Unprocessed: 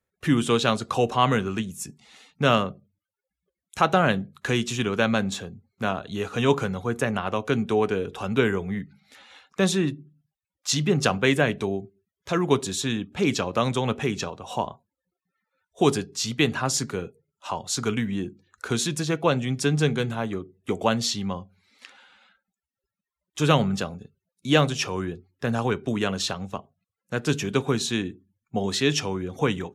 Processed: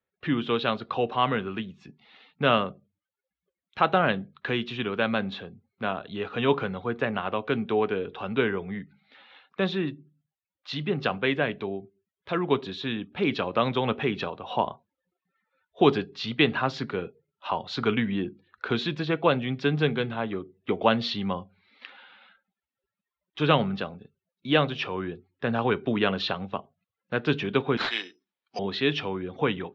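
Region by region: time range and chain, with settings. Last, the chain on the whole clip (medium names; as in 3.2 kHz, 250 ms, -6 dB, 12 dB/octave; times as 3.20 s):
27.77–28.59 s: high-pass 660 Hz + careless resampling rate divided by 8×, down none, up zero stuff
whole clip: steep low-pass 3.9 kHz 36 dB/octave; bass shelf 110 Hz -12 dB; gain riding 2 s; trim -1.5 dB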